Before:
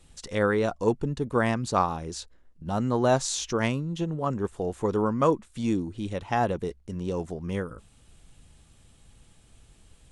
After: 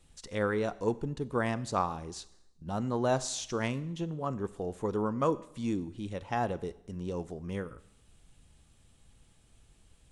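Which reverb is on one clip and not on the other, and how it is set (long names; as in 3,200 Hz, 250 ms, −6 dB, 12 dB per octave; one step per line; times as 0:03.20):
four-comb reverb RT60 0.82 s, combs from 30 ms, DRR 17 dB
level −6 dB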